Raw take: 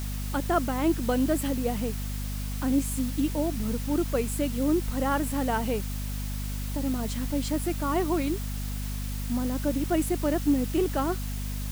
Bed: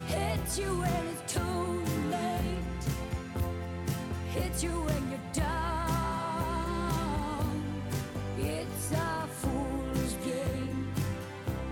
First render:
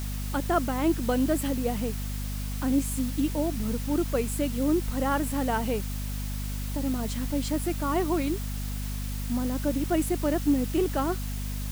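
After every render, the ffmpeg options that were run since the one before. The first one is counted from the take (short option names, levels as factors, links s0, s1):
-af anull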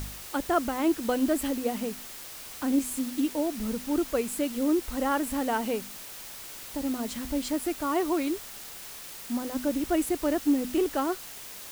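-af "bandreject=f=50:t=h:w=4,bandreject=f=100:t=h:w=4,bandreject=f=150:t=h:w=4,bandreject=f=200:t=h:w=4,bandreject=f=250:t=h:w=4"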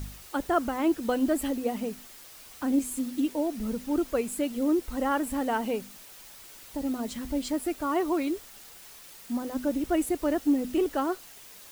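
-af "afftdn=nr=7:nf=-43"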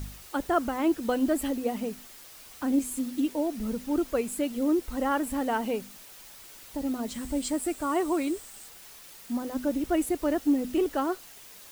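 -filter_complex "[0:a]asettb=1/sr,asplit=3[s0][s1][s2];[s0]atrim=end=7.144[s3];[s1]atrim=start=7.14:end=8.68,asetpts=PTS-STARTPTS,afade=t=in:d=0.004:c=qsin,afade=t=out:st=1.536:d=0.004:c=qsin,equalizer=f=8200:t=o:w=0.29:g=11[s4];[s2]atrim=start=8.676[s5];[s3][s4]acrossfade=d=0.004:c1=hsin:c2=qsin[s6];[s6][s5]acrossfade=d=0.004:c1=qsin:c2=hsin"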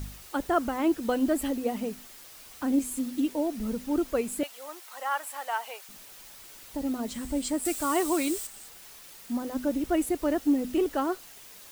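-filter_complex "[0:a]asettb=1/sr,asplit=3[s0][s1][s2];[s0]atrim=end=4.434[s3];[s1]atrim=start=4.43:end=5.89,asetpts=PTS-STARTPTS,afade=t=in:d=0.004:c=qsin,afade=t=out:st=1.456:d=0.004:c=qsin,highpass=f=720:w=0.5412,highpass=f=720:w=1.3066[s4];[s2]atrim=start=5.886[s5];[s3][s4]acrossfade=d=0.004:c1=hsin:c2=qsin[s6];[s6][s5]acrossfade=d=0.004:c1=qsin:c2=hsin,asettb=1/sr,asplit=3[s7][s8][s9];[s7]atrim=end=7.654[s10];[s8]atrim=start=7.65:end=8.47,asetpts=PTS-STARTPTS,afade=t=in:d=0.004:c=qsin,afade=t=out:st=0.816:d=0.004:c=qsin,highshelf=f=2900:g=11[s11];[s9]atrim=start=8.466[s12];[s10][s11]acrossfade=d=0.004:c1=hsin:c2=qsin[s13];[s13][s12]acrossfade=d=0.004:c1=qsin:c2=hsin"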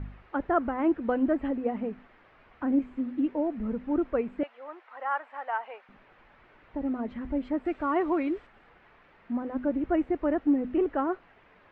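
-af "lowpass=f=2100:w=0.5412,lowpass=f=2100:w=1.3066"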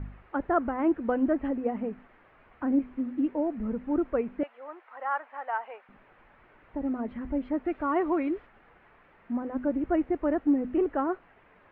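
-af "lowpass=2700"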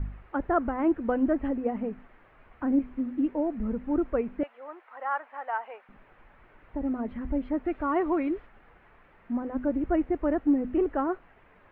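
-af "lowshelf=f=74:g=9.5"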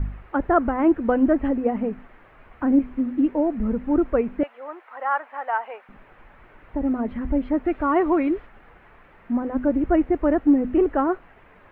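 -af "volume=2.11"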